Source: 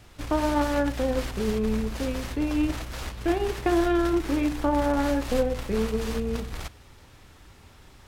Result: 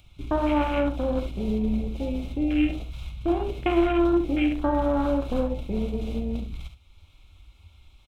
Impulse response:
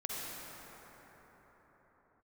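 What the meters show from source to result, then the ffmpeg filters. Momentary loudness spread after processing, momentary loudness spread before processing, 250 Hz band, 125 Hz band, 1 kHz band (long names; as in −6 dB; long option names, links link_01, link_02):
9 LU, 7 LU, +1.5 dB, +0.5 dB, −0.5 dB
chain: -filter_complex "[0:a]acompressor=mode=upward:threshold=-41dB:ratio=2.5,superequalizer=7b=0.562:11b=0.316:12b=2.82:13b=3.16,afwtdn=0.0316,asplit=2[link_01][link_02];[link_02]aecho=0:1:47|70:0.266|0.316[link_03];[link_01][link_03]amix=inputs=2:normalize=0"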